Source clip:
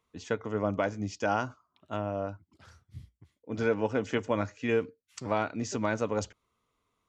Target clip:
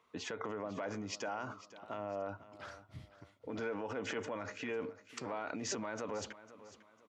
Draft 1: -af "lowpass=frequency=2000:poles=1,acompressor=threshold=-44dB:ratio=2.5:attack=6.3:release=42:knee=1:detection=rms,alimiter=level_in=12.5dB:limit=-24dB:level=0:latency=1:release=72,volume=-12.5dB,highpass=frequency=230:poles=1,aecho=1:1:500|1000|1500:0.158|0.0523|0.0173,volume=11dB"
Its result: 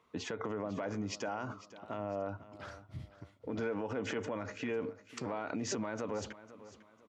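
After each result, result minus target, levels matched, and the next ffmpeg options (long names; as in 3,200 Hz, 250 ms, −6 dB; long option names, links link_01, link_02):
downward compressor: peak gain reduction +4 dB; 250 Hz band +2.5 dB
-af "lowpass=frequency=2000:poles=1,acompressor=threshold=-37.5dB:ratio=2.5:attack=6.3:release=42:knee=1:detection=rms,alimiter=level_in=12.5dB:limit=-24dB:level=0:latency=1:release=72,volume=-12.5dB,highpass=frequency=230:poles=1,aecho=1:1:500|1000|1500:0.158|0.0523|0.0173,volume=11dB"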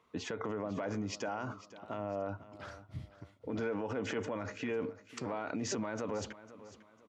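250 Hz band +2.5 dB
-af "lowpass=frequency=2000:poles=1,acompressor=threshold=-37.5dB:ratio=2.5:attack=6.3:release=42:knee=1:detection=rms,alimiter=level_in=12.5dB:limit=-24dB:level=0:latency=1:release=72,volume=-12.5dB,highpass=frequency=570:poles=1,aecho=1:1:500|1000|1500:0.158|0.0523|0.0173,volume=11dB"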